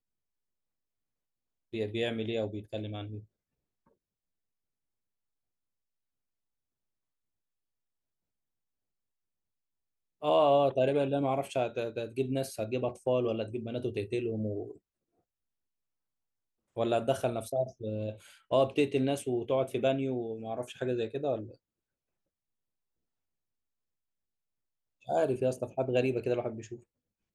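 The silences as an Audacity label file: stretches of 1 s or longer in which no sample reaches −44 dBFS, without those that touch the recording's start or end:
3.200000	10.220000	silence
14.720000	16.770000	silence
21.540000	25.080000	silence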